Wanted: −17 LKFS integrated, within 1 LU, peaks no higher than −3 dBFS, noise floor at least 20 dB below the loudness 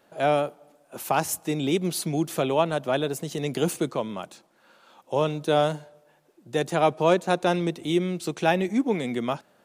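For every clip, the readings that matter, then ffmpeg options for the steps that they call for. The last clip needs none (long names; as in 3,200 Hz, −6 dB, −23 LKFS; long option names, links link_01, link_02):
integrated loudness −25.5 LKFS; sample peak −7.5 dBFS; target loudness −17.0 LKFS
→ -af "volume=8.5dB,alimiter=limit=-3dB:level=0:latency=1"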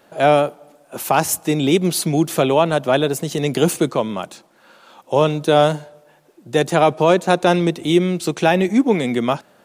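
integrated loudness −17.5 LKFS; sample peak −3.0 dBFS; background noise floor −54 dBFS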